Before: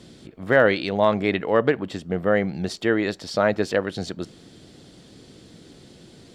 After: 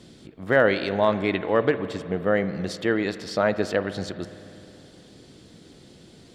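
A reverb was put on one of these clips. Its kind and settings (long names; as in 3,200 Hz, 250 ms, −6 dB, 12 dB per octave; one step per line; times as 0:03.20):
spring reverb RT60 3 s, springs 51 ms, chirp 35 ms, DRR 12.5 dB
level −2 dB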